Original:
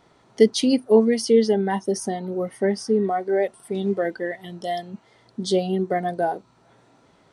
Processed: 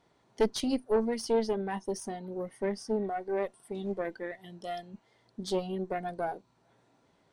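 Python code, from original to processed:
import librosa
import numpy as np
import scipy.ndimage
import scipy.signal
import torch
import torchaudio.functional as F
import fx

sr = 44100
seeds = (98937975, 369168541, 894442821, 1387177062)

y = fx.notch(x, sr, hz=1300.0, q=14.0)
y = fx.tube_stage(y, sr, drive_db=12.0, bias=0.75)
y = y * librosa.db_to_amplitude(-6.0)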